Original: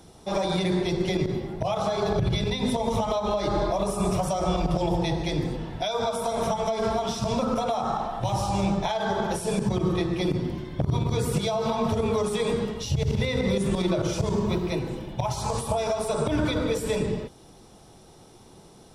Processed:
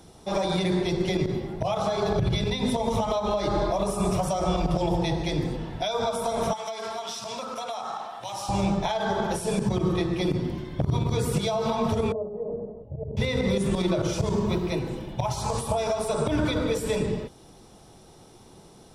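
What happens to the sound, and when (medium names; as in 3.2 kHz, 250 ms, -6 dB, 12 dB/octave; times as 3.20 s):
6.53–8.49 s: high-pass 1.4 kHz 6 dB/octave
12.12–13.17 s: four-pole ladder low-pass 670 Hz, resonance 65%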